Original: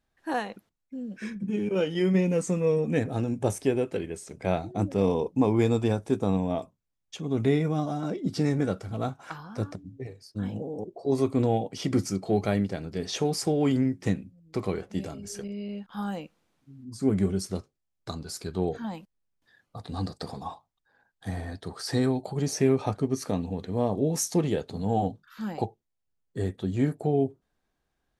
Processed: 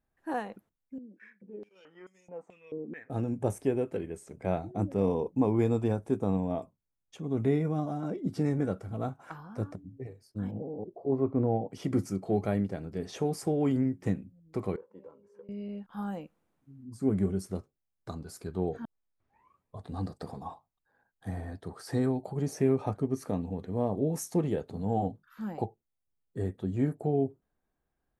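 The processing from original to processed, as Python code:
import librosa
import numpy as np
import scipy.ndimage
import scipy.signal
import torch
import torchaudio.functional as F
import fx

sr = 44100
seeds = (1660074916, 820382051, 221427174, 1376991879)

y = fx.filter_held_bandpass(x, sr, hz=4.6, low_hz=330.0, high_hz=6900.0, at=(0.98, 3.1))
y = fx.lowpass(y, sr, hz=1400.0, slope=12, at=(10.51, 11.71))
y = fx.double_bandpass(y, sr, hz=700.0, octaves=0.92, at=(14.76, 15.49))
y = fx.edit(y, sr, fx.tape_start(start_s=18.85, length_s=1.02), tone=tone)
y = fx.peak_eq(y, sr, hz=4500.0, db=-11.0, octaves=2.0)
y = y * librosa.db_to_amplitude(-3.0)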